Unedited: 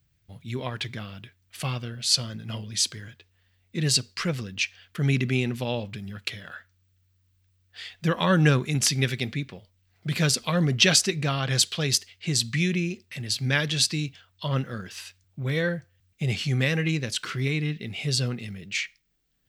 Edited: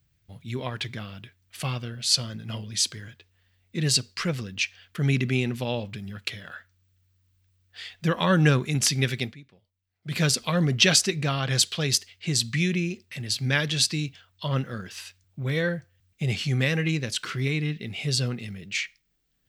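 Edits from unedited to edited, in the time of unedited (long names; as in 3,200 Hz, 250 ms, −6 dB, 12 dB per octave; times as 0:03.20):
0:09.23–0:10.16: duck −16.5 dB, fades 0.13 s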